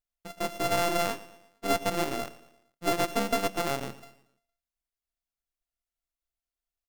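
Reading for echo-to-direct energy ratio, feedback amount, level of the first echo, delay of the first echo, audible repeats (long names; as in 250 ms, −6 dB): −16.5 dB, 46%, −17.5 dB, 115 ms, 3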